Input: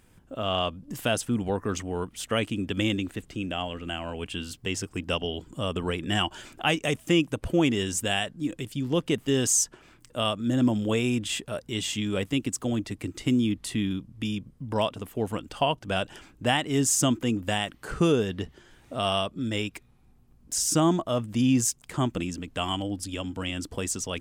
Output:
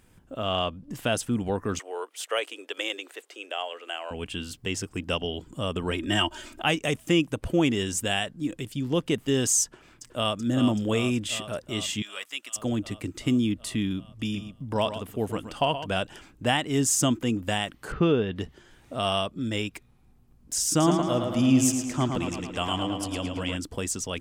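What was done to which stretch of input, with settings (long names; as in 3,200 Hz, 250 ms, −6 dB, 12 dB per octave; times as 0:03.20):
0:00.64–0:01.12: high-shelf EQ 6,400 Hz −7 dB
0:01.79–0:04.11: Butterworth high-pass 410 Hz
0:05.91–0:06.62: comb filter 3.2 ms, depth 75%
0:09.63–0:10.38: delay throw 380 ms, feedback 75%, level −7.5 dB
0:12.02–0:12.56: high-pass filter 1,300 Hz
0:14.07–0:15.97: single-tap delay 125 ms −11 dB
0:17.92–0:18.36: low-pass filter 3,600 Hz 24 dB per octave
0:20.69–0:23.57: tape delay 110 ms, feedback 70%, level −4 dB, low-pass 5,500 Hz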